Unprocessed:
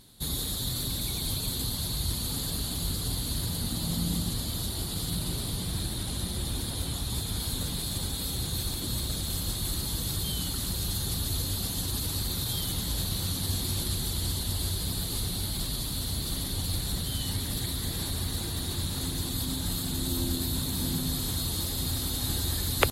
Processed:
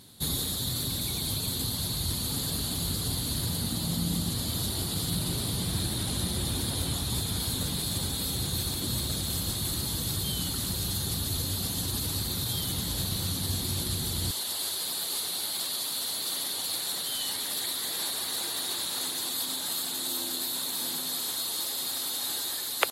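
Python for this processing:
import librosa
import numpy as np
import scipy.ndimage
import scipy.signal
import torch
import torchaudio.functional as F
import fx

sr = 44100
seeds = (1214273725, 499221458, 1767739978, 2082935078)

y = fx.highpass(x, sr, hz=fx.steps((0.0, 75.0), (14.31, 560.0)), slope=12)
y = fx.rider(y, sr, range_db=10, speed_s=0.5)
y = y * 10.0 ** (2.0 / 20.0)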